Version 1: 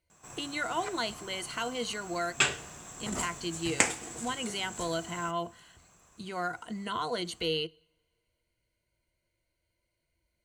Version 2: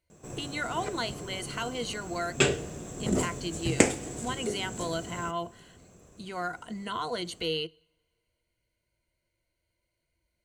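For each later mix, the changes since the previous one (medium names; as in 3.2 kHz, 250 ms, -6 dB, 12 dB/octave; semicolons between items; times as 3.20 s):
background: add resonant low shelf 680 Hz +11 dB, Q 1.5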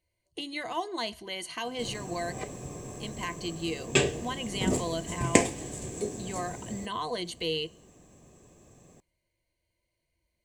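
background: entry +1.55 s; master: add Butterworth band-stop 1.4 kHz, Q 5.1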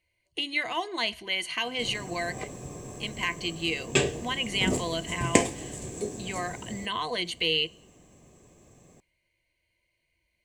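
speech: add peaking EQ 2.4 kHz +11.5 dB 1.1 oct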